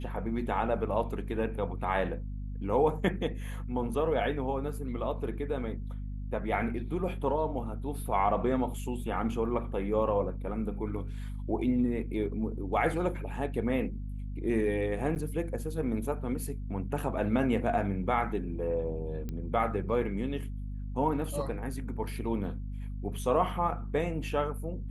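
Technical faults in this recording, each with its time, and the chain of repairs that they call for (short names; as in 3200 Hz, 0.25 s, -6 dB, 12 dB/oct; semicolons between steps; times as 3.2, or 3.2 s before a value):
hum 50 Hz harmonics 5 -37 dBFS
15.15–15.16 gap 9.3 ms
19.29 pop -24 dBFS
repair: de-click; de-hum 50 Hz, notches 5; interpolate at 15.15, 9.3 ms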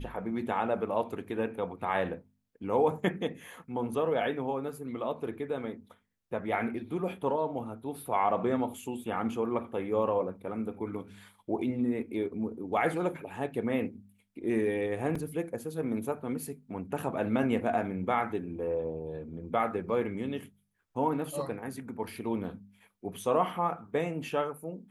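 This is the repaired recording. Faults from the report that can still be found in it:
none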